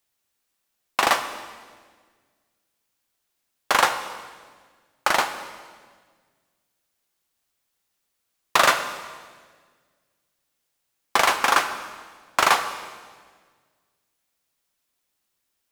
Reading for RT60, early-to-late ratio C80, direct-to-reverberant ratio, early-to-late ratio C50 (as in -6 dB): 1.6 s, 11.0 dB, 8.0 dB, 10.0 dB